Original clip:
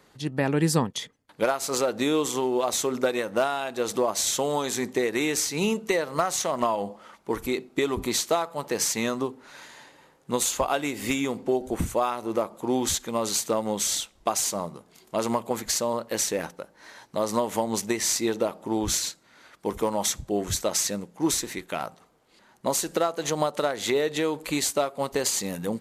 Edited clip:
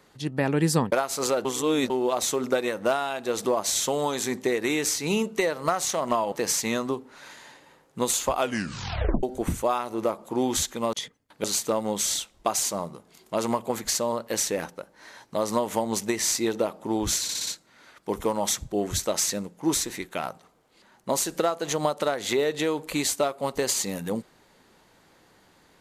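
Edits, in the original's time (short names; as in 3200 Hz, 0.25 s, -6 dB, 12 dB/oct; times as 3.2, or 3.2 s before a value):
0.92–1.43 move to 13.25
1.96–2.41 reverse
6.83–8.64 cut
10.69 tape stop 0.86 s
19.04 stutter 0.06 s, 5 plays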